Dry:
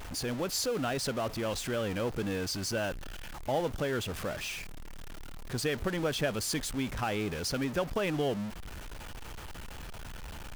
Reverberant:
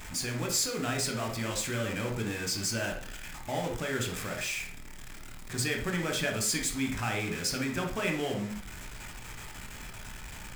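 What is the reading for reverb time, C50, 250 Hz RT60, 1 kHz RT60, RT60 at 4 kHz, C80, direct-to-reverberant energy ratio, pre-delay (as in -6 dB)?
0.50 s, 7.5 dB, 0.45 s, 0.50 s, 0.40 s, 13.0 dB, 2.0 dB, 14 ms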